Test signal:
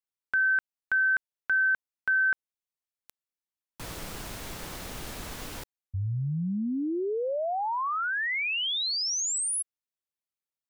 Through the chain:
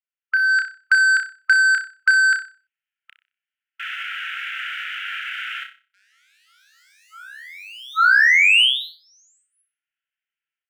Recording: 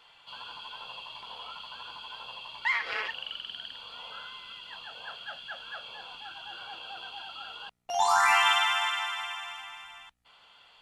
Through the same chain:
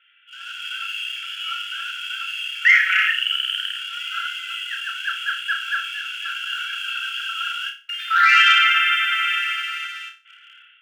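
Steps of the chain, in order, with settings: elliptic low-pass 3 kHz, stop band 40 dB; level rider gain up to 11 dB; waveshaping leveller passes 1; in parallel at -2 dB: compression, threshold -23 dBFS; on the sum: brick-wall FIR high-pass 1.3 kHz; on a send: flutter echo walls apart 5.3 m, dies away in 0.34 s; on the sum: trim -1.5 dB

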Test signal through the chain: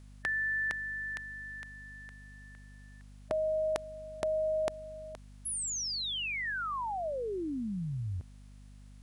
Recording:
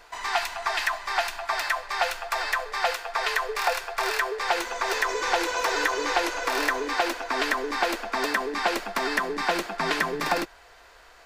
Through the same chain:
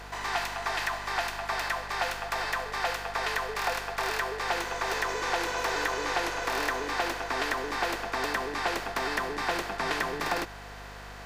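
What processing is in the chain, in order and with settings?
spectral levelling over time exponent 0.6; hum 50 Hz, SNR 16 dB; trim -7.5 dB

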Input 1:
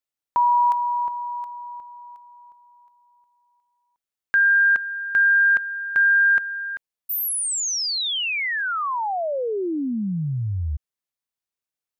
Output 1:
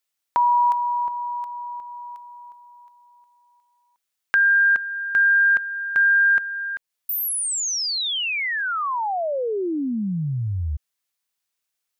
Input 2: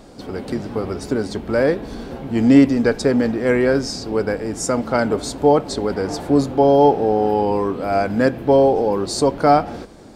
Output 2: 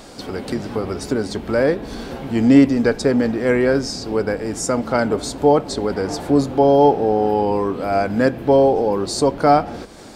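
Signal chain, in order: tape noise reduction on one side only encoder only

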